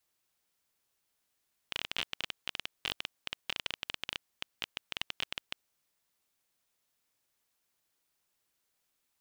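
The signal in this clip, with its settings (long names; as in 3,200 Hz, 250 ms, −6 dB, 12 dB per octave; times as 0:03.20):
Geiger counter clicks 17 per second −16 dBFS 3.88 s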